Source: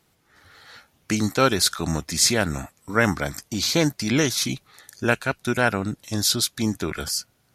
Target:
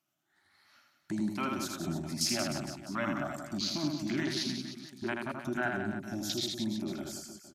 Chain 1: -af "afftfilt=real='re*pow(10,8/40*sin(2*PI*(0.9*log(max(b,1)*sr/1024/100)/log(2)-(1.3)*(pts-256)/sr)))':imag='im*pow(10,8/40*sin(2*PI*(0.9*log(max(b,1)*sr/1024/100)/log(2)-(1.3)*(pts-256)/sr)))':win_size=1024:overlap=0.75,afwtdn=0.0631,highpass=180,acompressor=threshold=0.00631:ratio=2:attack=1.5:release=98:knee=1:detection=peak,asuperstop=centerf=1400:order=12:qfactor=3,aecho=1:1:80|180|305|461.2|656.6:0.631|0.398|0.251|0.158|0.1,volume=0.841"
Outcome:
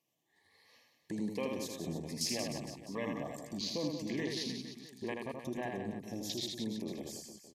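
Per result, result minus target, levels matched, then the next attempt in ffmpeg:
compression: peak gain reduction +4.5 dB; 500 Hz band +3.5 dB
-af "afftfilt=real='re*pow(10,8/40*sin(2*PI*(0.9*log(max(b,1)*sr/1024/100)/log(2)-(1.3)*(pts-256)/sr)))':imag='im*pow(10,8/40*sin(2*PI*(0.9*log(max(b,1)*sr/1024/100)/log(2)-(1.3)*(pts-256)/sr)))':win_size=1024:overlap=0.75,afwtdn=0.0631,highpass=180,acompressor=threshold=0.0188:ratio=2:attack=1.5:release=98:knee=1:detection=peak,asuperstop=centerf=1400:order=12:qfactor=3,aecho=1:1:80|180|305|461.2|656.6:0.631|0.398|0.251|0.158|0.1,volume=0.841"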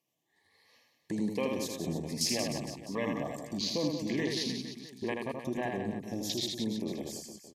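500 Hz band +3.5 dB
-af "afftfilt=real='re*pow(10,8/40*sin(2*PI*(0.9*log(max(b,1)*sr/1024/100)/log(2)-(1.3)*(pts-256)/sr)))':imag='im*pow(10,8/40*sin(2*PI*(0.9*log(max(b,1)*sr/1024/100)/log(2)-(1.3)*(pts-256)/sr)))':win_size=1024:overlap=0.75,afwtdn=0.0631,highpass=180,acompressor=threshold=0.0188:ratio=2:attack=1.5:release=98:knee=1:detection=peak,asuperstop=centerf=470:order=12:qfactor=3,aecho=1:1:80|180|305|461.2|656.6:0.631|0.398|0.251|0.158|0.1,volume=0.841"

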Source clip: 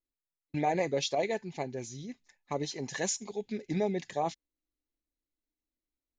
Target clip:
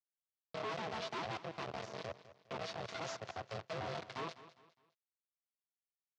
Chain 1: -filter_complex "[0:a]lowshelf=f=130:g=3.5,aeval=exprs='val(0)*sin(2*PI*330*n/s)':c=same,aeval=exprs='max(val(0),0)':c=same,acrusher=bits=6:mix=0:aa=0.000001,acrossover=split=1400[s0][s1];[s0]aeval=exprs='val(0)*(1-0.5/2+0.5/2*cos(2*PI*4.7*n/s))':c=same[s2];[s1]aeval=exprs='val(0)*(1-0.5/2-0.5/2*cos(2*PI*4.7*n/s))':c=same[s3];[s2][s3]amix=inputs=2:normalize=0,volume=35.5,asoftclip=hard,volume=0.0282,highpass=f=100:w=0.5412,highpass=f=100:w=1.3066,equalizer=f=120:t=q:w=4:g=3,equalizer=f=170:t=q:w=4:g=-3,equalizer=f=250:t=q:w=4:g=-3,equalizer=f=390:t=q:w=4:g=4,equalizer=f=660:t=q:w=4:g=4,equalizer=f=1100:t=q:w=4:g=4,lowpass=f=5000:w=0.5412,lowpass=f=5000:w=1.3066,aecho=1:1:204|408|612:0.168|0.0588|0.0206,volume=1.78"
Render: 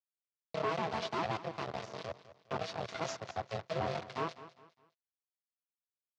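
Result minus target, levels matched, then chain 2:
overload inside the chain: distortion -7 dB
-filter_complex "[0:a]lowshelf=f=130:g=3.5,aeval=exprs='val(0)*sin(2*PI*330*n/s)':c=same,aeval=exprs='max(val(0),0)':c=same,acrusher=bits=6:mix=0:aa=0.000001,acrossover=split=1400[s0][s1];[s0]aeval=exprs='val(0)*(1-0.5/2+0.5/2*cos(2*PI*4.7*n/s))':c=same[s2];[s1]aeval=exprs='val(0)*(1-0.5/2-0.5/2*cos(2*PI*4.7*n/s))':c=same[s3];[s2][s3]amix=inputs=2:normalize=0,volume=106,asoftclip=hard,volume=0.00944,highpass=f=100:w=0.5412,highpass=f=100:w=1.3066,equalizer=f=120:t=q:w=4:g=3,equalizer=f=170:t=q:w=4:g=-3,equalizer=f=250:t=q:w=4:g=-3,equalizer=f=390:t=q:w=4:g=4,equalizer=f=660:t=q:w=4:g=4,equalizer=f=1100:t=q:w=4:g=4,lowpass=f=5000:w=0.5412,lowpass=f=5000:w=1.3066,aecho=1:1:204|408|612:0.168|0.0588|0.0206,volume=1.78"

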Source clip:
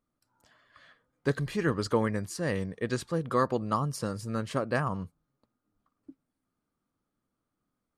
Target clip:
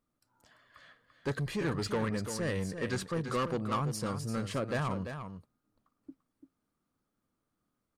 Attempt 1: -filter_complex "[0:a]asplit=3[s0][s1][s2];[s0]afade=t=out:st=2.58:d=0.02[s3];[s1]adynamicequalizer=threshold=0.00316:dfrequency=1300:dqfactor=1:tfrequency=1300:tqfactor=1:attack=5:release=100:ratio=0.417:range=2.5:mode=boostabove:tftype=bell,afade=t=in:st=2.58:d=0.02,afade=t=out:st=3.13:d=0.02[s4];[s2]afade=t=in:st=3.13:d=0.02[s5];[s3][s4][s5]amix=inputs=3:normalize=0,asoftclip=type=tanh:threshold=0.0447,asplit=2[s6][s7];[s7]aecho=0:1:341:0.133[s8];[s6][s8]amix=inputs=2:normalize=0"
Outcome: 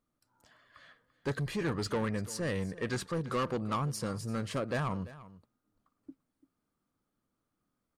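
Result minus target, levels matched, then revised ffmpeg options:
echo-to-direct -9 dB
-filter_complex "[0:a]asplit=3[s0][s1][s2];[s0]afade=t=out:st=2.58:d=0.02[s3];[s1]adynamicequalizer=threshold=0.00316:dfrequency=1300:dqfactor=1:tfrequency=1300:tqfactor=1:attack=5:release=100:ratio=0.417:range=2.5:mode=boostabove:tftype=bell,afade=t=in:st=2.58:d=0.02,afade=t=out:st=3.13:d=0.02[s4];[s2]afade=t=in:st=3.13:d=0.02[s5];[s3][s4][s5]amix=inputs=3:normalize=0,asoftclip=type=tanh:threshold=0.0447,asplit=2[s6][s7];[s7]aecho=0:1:341:0.376[s8];[s6][s8]amix=inputs=2:normalize=0"

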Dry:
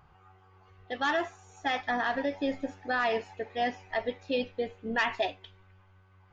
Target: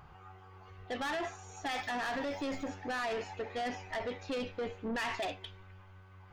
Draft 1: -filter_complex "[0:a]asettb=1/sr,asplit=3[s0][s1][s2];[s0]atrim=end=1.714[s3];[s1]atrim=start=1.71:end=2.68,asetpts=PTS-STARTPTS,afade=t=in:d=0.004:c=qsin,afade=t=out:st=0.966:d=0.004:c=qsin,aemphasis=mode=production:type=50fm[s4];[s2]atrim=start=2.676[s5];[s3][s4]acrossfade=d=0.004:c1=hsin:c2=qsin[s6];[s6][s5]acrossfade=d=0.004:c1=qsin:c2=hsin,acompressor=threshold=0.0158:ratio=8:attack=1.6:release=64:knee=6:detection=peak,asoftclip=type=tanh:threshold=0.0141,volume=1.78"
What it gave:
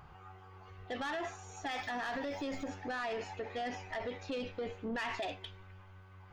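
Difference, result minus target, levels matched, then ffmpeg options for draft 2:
compression: peak gain reduction +5.5 dB
-filter_complex "[0:a]asettb=1/sr,asplit=3[s0][s1][s2];[s0]atrim=end=1.714[s3];[s1]atrim=start=1.71:end=2.68,asetpts=PTS-STARTPTS,afade=t=in:d=0.004:c=qsin,afade=t=out:st=0.966:d=0.004:c=qsin,aemphasis=mode=production:type=50fm[s4];[s2]atrim=start=2.676[s5];[s3][s4]acrossfade=d=0.004:c1=hsin:c2=qsin[s6];[s6][s5]acrossfade=d=0.004:c1=qsin:c2=hsin,acompressor=threshold=0.0316:ratio=8:attack=1.6:release=64:knee=6:detection=peak,asoftclip=type=tanh:threshold=0.0141,volume=1.78"

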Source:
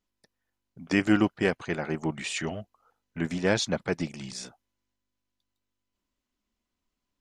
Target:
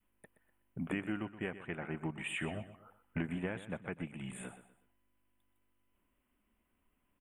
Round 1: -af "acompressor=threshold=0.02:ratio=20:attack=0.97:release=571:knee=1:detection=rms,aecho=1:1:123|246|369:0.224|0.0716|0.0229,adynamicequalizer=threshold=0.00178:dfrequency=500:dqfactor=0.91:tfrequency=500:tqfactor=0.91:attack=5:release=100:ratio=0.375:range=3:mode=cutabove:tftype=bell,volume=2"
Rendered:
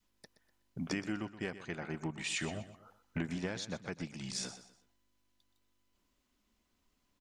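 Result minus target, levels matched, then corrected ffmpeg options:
4 kHz band +7.0 dB
-af "acompressor=threshold=0.02:ratio=20:attack=0.97:release=571:knee=1:detection=rms,aecho=1:1:123|246|369:0.224|0.0716|0.0229,adynamicequalizer=threshold=0.00178:dfrequency=500:dqfactor=0.91:tfrequency=500:tqfactor=0.91:attack=5:release=100:ratio=0.375:range=3:mode=cutabove:tftype=bell,asuperstop=centerf=5200:order=8:qfactor=0.94,volume=2"

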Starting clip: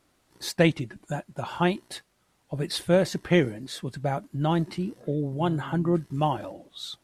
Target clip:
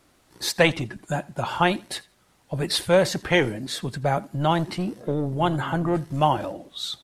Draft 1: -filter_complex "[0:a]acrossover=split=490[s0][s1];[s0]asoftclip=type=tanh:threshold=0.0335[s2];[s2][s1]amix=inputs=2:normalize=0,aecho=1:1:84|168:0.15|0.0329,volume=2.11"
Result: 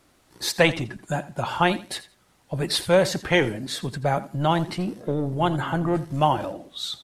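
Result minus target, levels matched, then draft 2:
echo-to-direct +6.5 dB
-filter_complex "[0:a]acrossover=split=490[s0][s1];[s0]asoftclip=type=tanh:threshold=0.0335[s2];[s2][s1]amix=inputs=2:normalize=0,aecho=1:1:84|168:0.0708|0.0156,volume=2.11"

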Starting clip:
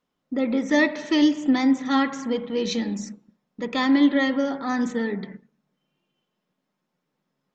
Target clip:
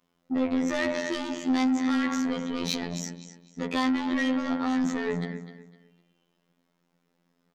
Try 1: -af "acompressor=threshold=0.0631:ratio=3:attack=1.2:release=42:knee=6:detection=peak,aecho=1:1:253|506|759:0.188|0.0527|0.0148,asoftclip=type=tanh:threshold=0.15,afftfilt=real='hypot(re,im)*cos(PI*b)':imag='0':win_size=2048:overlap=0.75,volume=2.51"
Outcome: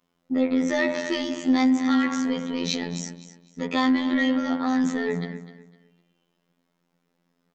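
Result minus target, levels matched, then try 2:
saturation: distortion -15 dB
-af "acompressor=threshold=0.0631:ratio=3:attack=1.2:release=42:knee=6:detection=peak,aecho=1:1:253|506|759:0.188|0.0527|0.0148,asoftclip=type=tanh:threshold=0.0422,afftfilt=real='hypot(re,im)*cos(PI*b)':imag='0':win_size=2048:overlap=0.75,volume=2.51"

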